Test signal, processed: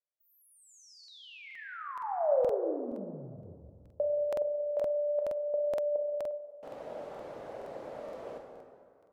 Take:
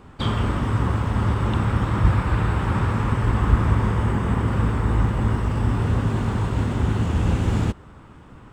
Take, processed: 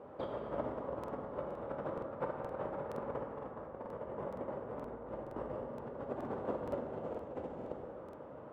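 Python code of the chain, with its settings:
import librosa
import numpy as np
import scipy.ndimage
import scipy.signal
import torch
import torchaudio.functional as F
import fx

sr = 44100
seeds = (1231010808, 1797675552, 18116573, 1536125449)

y = fx.over_compress(x, sr, threshold_db=-26.0, ratio=-0.5)
y = fx.bandpass_q(y, sr, hz=560.0, q=4.0)
y = fx.rev_plate(y, sr, seeds[0], rt60_s=2.2, hf_ratio=0.6, predelay_ms=0, drr_db=1.5)
y = fx.buffer_crackle(y, sr, first_s=0.99, period_s=0.47, block=2048, kind='repeat')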